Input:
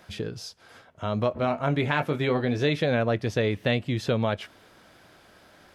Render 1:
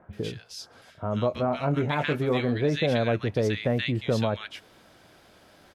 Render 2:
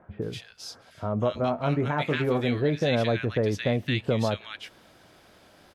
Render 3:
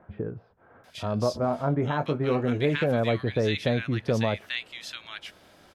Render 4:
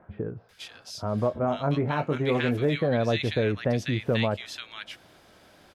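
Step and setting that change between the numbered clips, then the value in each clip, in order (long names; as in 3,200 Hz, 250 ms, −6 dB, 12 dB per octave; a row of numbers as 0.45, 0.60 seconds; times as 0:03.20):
multiband delay without the direct sound, delay time: 130, 220, 840, 490 milliseconds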